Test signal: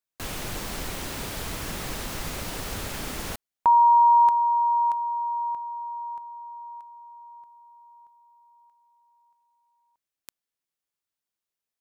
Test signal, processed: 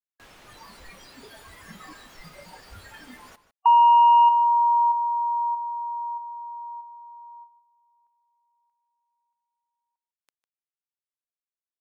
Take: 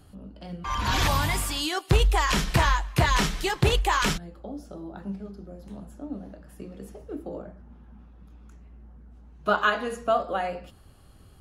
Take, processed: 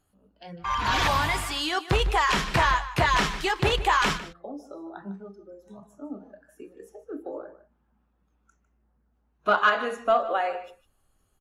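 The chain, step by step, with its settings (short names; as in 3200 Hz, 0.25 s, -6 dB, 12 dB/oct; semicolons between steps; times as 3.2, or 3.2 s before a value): overdrive pedal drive 9 dB, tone 2500 Hz, clips at -8 dBFS; spectral noise reduction 17 dB; outdoor echo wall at 26 m, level -14 dB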